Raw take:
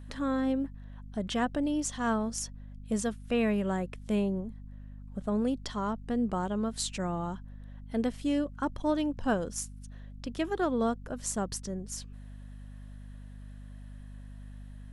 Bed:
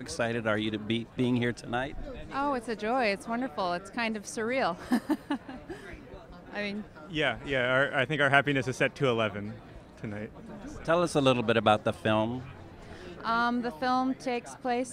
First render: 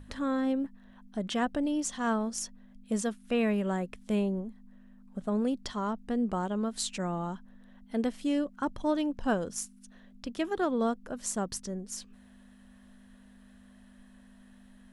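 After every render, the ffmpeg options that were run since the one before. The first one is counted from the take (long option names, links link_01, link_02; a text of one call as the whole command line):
ffmpeg -i in.wav -af "bandreject=frequency=50:width_type=h:width=6,bandreject=frequency=100:width_type=h:width=6,bandreject=frequency=150:width_type=h:width=6" out.wav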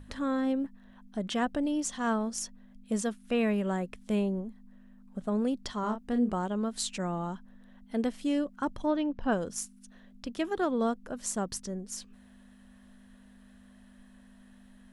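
ffmpeg -i in.wav -filter_complex "[0:a]asettb=1/sr,asplit=3[link_01][link_02][link_03];[link_01]atrim=end=5.804[link_04];[link_02]atrim=start=5.8:end=6.32,asetpts=PTS-STARTPTS,afade=type=in:duration=0.004:curve=qsin,afade=type=out:start_time=0.516:duration=0.004:curve=qsin,asplit=2[link_05][link_06];[link_06]adelay=33,volume=-6.5dB[link_07];[link_05][link_07]amix=inputs=2:normalize=0,atrim=end_sample=22932[link_08];[link_03]atrim=start=6.316[link_09];[link_04][link_08]acrossfade=duration=0.004:curve1=hsin:curve2=qsin[link_10];[link_10][link_09]acrossfade=duration=0.004:curve1=qsin:curve2=hsin,asplit=3[link_11][link_12][link_13];[link_11]afade=type=out:start_time=8.85:duration=0.02[link_14];[link_12]lowpass=3400,afade=type=in:start_time=8.85:duration=0.02,afade=type=out:start_time=9.31:duration=0.02[link_15];[link_13]afade=type=in:start_time=9.31:duration=0.02[link_16];[link_14][link_15][link_16]amix=inputs=3:normalize=0" out.wav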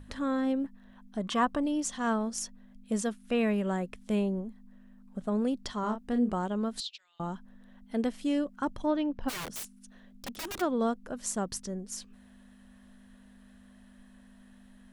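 ffmpeg -i in.wav -filter_complex "[0:a]asettb=1/sr,asplit=3[link_01][link_02][link_03];[link_01]atrim=end=1.214[link_04];[link_02]atrim=start=1.21:end=1.63,asetpts=PTS-STARTPTS,afade=type=in:duration=0.004:curve=qsin,afade=type=out:start_time=0.416:duration=0.004:curve=qsin,equalizer=frequency=1100:width=4.1:gain=15[link_05];[link_03]atrim=start=1.626[link_06];[link_04][link_05]acrossfade=duration=0.004:curve1=hsin:curve2=qsin[link_07];[link_07][link_06]acrossfade=duration=0.004:curve1=qsin:curve2=hsin,asettb=1/sr,asplit=3[link_08][link_09][link_10];[link_08]atrim=end=6.804[link_11];[link_09]atrim=start=6.8:end=7.2,asetpts=PTS-STARTPTS,afade=type=in:duration=0.004:curve=qsin,afade=type=out:start_time=0.396:duration=0.004:curve=qsin,asuperpass=centerf=3800:order=4:qfactor=2.1[link_12];[link_10]atrim=start=7.196[link_13];[link_11][link_12]acrossfade=duration=0.004:curve1=hsin:curve2=qsin[link_14];[link_14][link_13]acrossfade=duration=0.004:curve1=qsin:curve2=hsin,asplit=3[link_15][link_16][link_17];[link_15]afade=type=out:start_time=9.28:duration=0.02[link_18];[link_16]aeval=exprs='(mod(42.2*val(0)+1,2)-1)/42.2':channel_layout=same,afade=type=in:start_time=9.28:duration=0.02,afade=type=out:start_time=10.6:duration=0.02[link_19];[link_17]afade=type=in:start_time=10.6:duration=0.02[link_20];[link_18][link_19][link_20]amix=inputs=3:normalize=0" out.wav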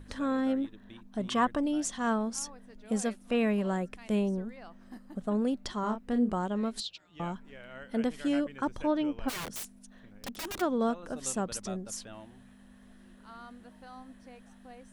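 ffmpeg -i in.wav -i bed.wav -filter_complex "[1:a]volume=-21.5dB[link_01];[0:a][link_01]amix=inputs=2:normalize=0" out.wav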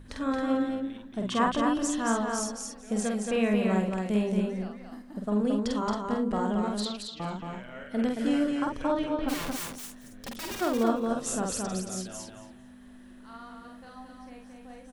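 ffmpeg -i in.wav -filter_complex "[0:a]asplit=2[link_01][link_02];[link_02]adelay=48,volume=-3dB[link_03];[link_01][link_03]amix=inputs=2:normalize=0,asplit=2[link_04][link_05];[link_05]aecho=0:1:224|448|672:0.631|0.101|0.0162[link_06];[link_04][link_06]amix=inputs=2:normalize=0" out.wav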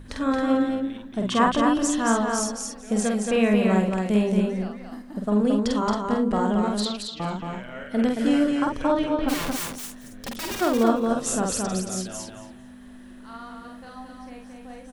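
ffmpeg -i in.wav -af "volume=5.5dB" out.wav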